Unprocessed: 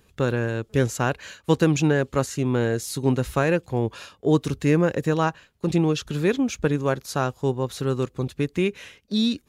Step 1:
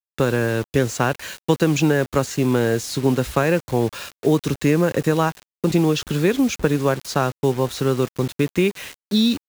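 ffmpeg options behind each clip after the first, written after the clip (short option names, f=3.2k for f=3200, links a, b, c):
-filter_complex "[0:a]acrossover=split=170|7100[a][b][c];[a]acompressor=threshold=-34dB:ratio=4[d];[b]acompressor=threshold=-21dB:ratio=4[e];[c]acompressor=threshold=-50dB:ratio=4[f];[d][e][f]amix=inputs=3:normalize=0,acrusher=bits=6:mix=0:aa=0.000001,volume=6.5dB"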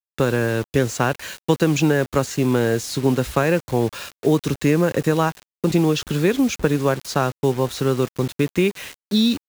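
-af anull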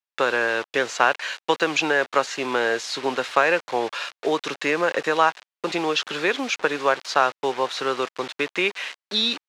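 -af "highpass=740,lowpass=4.1k,volume=5.5dB"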